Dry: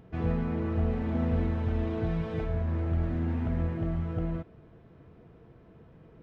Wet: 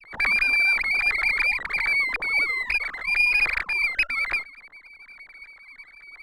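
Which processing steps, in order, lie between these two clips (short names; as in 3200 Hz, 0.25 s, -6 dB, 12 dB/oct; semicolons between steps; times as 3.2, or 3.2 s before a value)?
sine-wave speech; inverted band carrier 2700 Hz; running maximum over 3 samples; gain +5.5 dB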